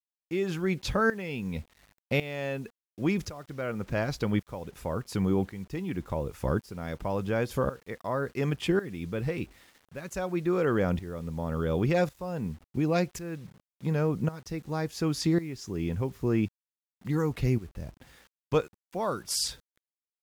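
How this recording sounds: tremolo saw up 0.91 Hz, depth 85%; a quantiser's noise floor 10-bit, dither none; AAC

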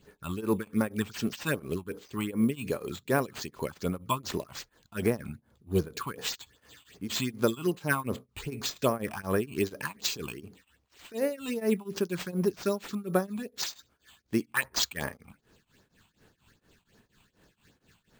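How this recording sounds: phasing stages 6, 2.6 Hz, lowest notch 440–4400 Hz; aliases and images of a low sample rate 11 kHz, jitter 0%; tremolo triangle 4.2 Hz, depth 95%

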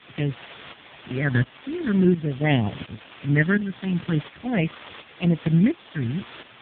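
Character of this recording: phasing stages 6, 0.45 Hz, lowest notch 590–1600 Hz; a quantiser's noise floor 6-bit, dither triangular; tremolo saw up 1.4 Hz, depth 70%; AMR-NB

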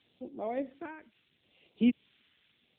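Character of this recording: a quantiser's noise floor 10-bit, dither triangular; random-step tremolo; phasing stages 2, 0.75 Hz, lowest notch 670–1500 Hz; AMR-NB

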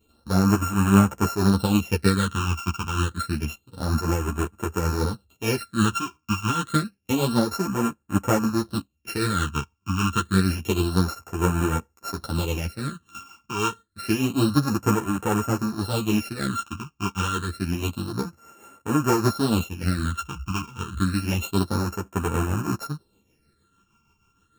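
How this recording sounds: a buzz of ramps at a fixed pitch in blocks of 32 samples; phasing stages 8, 0.28 Hz, lowest notch 540–4400 Hz; tremolo triangle 6.4 Hz, depth 50%; a shimmering, thickened sound

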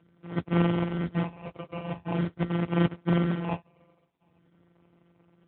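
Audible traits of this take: a buzz of ramps at a fixed pitch in blocks of 256 samples; phasing stages 6, 0.45 Hz, lowest notch 260–1800 Hz; aliases and images of a low sample rate 1.7 kHz, jitter 0%; AMR-NB

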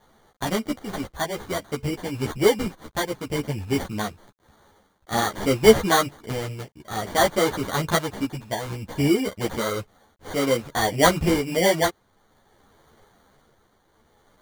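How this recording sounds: a quantiser's noise floor 10-bit, dither none; tremolo triangle 0.56 Hz, depth 60%; aliases and images of a low sample rate 2.6 kHz, jitter 0%; a shimmering, thickened sound

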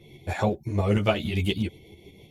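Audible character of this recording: tremolo saw up 6.2 Hz, depth 50%; a shimmering, thickened sound

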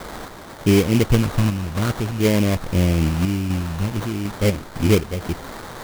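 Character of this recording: a quantiser's noise floor 6-bit, dither triangular; random-step tremolo 4 Hz; phasing stages 2, 0.47 Hz, lowest notch 530–2700 Hz; aliases and images of a low sample rate 2.7 kHz, jitter 20%

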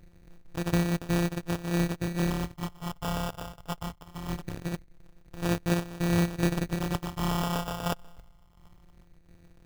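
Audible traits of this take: a buzz of ramps at a fixed pitch in blocks of 256 samples; phasing stages 4, 0.22 Hz, lowest notch 320–1800 Hz; tremolo saw down 1.4 Hz, depth 45%; aliases and images of a low sample rate 2.1 kHz, jitter 0%

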